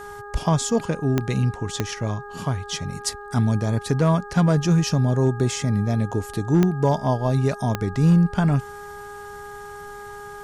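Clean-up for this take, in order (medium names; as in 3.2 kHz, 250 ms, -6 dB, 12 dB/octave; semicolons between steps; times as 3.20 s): clip repair -10 dBFS; de-click; de-hum 410 Hz, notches 4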